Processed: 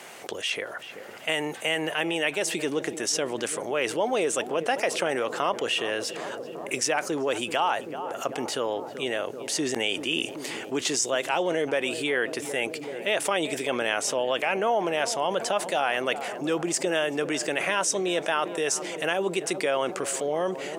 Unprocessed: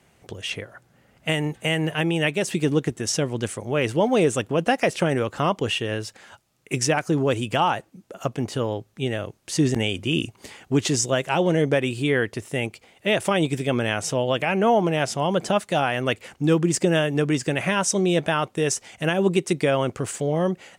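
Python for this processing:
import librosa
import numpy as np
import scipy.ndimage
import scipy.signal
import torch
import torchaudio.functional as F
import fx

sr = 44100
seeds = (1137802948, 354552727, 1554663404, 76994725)

y = scipy.signal.sosfilt(scipy.signal.butter(2, 450.0, 'highpass', fs=sr, output='sos'), x)
y = fx.echo_filtered(y, sr, ms=384, feedback_pct=82, hz=1000.0, wet_db=-17.0)
y = fx.env_flatten(y, sr, amount_pct=50)
y = y * 10.0 ** (-4.5 / 20.0)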